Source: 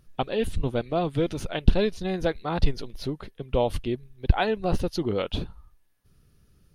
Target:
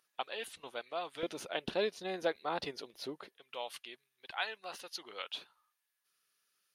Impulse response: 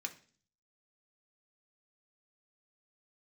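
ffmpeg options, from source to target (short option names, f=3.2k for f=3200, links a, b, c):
-af "asetnsamples=n=441:p=0,asendcmd='1.23 highpass f 440;3.37 highpass f 1300',highpass=940,volume=-5dB"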